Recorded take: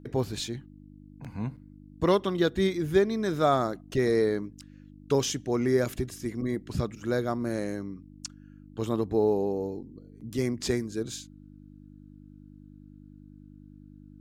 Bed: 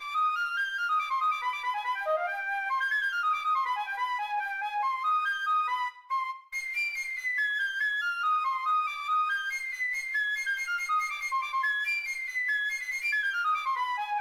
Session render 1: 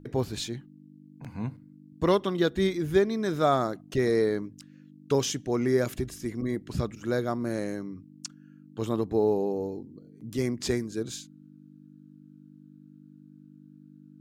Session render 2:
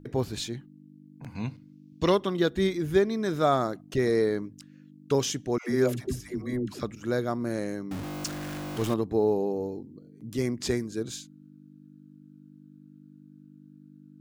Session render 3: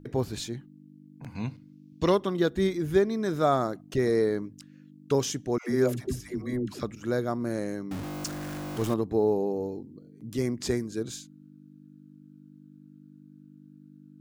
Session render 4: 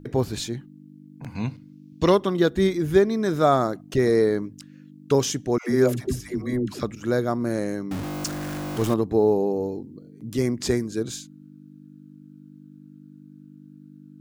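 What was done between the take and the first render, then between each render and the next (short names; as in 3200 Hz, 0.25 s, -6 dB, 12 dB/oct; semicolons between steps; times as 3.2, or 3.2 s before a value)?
de-hum 50 Hz, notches 2
1.35–2.1 band shelf 3900 Hz +11 dB; 5.58–6.83 dispersion lows, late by 0.128 s, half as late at 450 Hz; 7.91–8.94 zero-crossing step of -30.5 dBFS
dynamic EQ 3000 Hz, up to -4 dB, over -45 dBFS, Q 0.99
gain +5 dB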